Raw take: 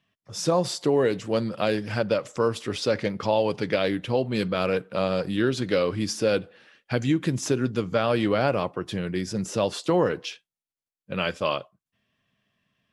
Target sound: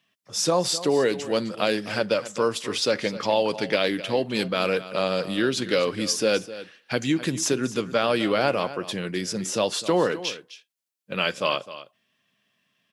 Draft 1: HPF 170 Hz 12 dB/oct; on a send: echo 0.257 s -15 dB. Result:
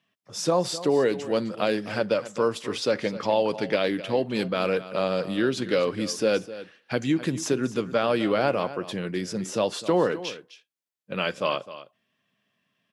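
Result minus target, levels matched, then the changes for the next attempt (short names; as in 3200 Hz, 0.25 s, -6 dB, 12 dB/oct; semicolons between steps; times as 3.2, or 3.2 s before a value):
4000 Hz band -4.0 dB
add after HPF: high shelf 2200 Hz +7.5 dB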